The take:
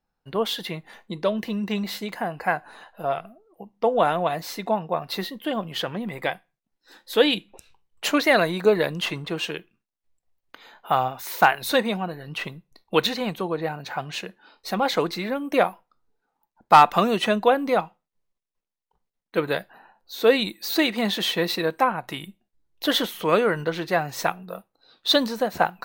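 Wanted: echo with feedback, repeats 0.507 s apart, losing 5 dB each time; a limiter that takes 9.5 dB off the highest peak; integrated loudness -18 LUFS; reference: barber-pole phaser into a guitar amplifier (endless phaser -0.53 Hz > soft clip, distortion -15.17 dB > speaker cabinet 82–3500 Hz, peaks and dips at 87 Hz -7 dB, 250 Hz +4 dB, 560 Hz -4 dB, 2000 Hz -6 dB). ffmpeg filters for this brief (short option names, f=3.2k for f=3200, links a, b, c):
-filter_complex "[0:a]alimiter=limit=-12.5dB:level=0:latency=1,aecho=1:1:507|1014|1521|2028|2535|3042|3549:0.562|0.315|0.176|0.0988|0.0553|0.031|0.0173,asplit=2[a][b];[b]afreqshift=-0.53[c];[a][c]amix=inputs=2:normalize=1,asoftclip=threshold=-20.5dB,highpass=82,equalizer=f=87:t=q:w=4:g=-7,equalizer=f=250:t=q:w=4:g=4,equalizer=f=560:t=q:w=4:g=-4,equalizer=f=2k:t=q:w=4:g=-6,lowpass=f=3.5k:w=0.5412,lowpass=f=3.5k:w=1.3066,volume=13.5dB"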